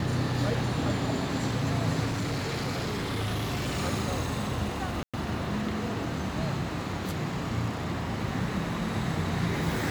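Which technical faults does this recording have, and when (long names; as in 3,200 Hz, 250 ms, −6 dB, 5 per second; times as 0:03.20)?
0:02.05–0:03.79: clipping −26.5 dBFS
0:05.03–0:05.14: drop-out 106 ms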